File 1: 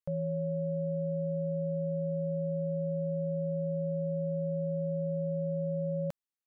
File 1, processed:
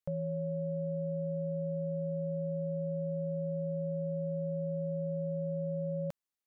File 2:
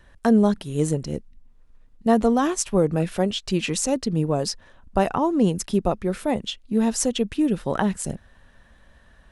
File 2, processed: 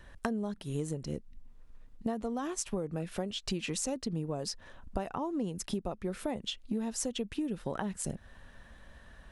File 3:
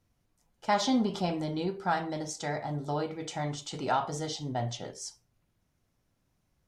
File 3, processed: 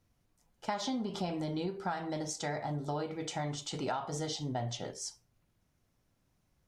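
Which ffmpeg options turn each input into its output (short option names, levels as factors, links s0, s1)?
-af "acompressor=threshold=0.0282:ratio=12"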